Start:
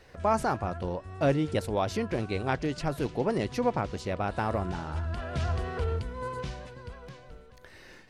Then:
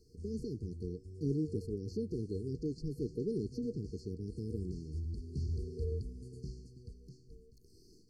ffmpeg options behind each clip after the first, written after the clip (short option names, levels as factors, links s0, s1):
-filter_complex "[0:a]afftfilt=real='re*(1-between(b*sr/4096,480,4200))':imag='im*(1-between(b*sr/4096,480,4200))':win_size=4096:overlap=0.75,acrossover=split=4000[s0][s1];[s1]acompressor=threshold=0.00126:ratio=4:attack=1:release=60[s2];[s0][s2]amix=inputs=2:normalize=0,volume=0.501"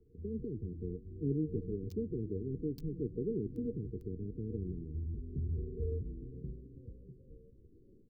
-filter_complex "[0:a]asplit=6[s0][s1][s2][s3][s4][s5];[s1]adelay=278,afreqshift=-120,volume=0.2[s6];[s2]adelay=556,afreqshift=-240,volume=0.104[s7];[s3]adelay=834,afreqshift=-360,volume=0.0537[s8];[s4]adelay=1112,afreqshift=-480,volume=0.0282[s9];[s5]adelay=1390,afreqshift=-600,volume=0.0146[s10];[s0][s6][s7][s8][s9][s10]amix=inputs=6:normalize=0,acrossover=split=180|1600[s11][s12][s13];[s13]acrusher=bits=7:mix=0:aa=0.000001[s14];[s11][s12][s14]amix=inputs=3:normalize=0"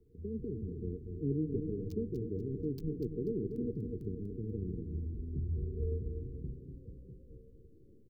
-af "aecho=1:1:243|486|729|972:0.447|0.161|0.0579|0.0208"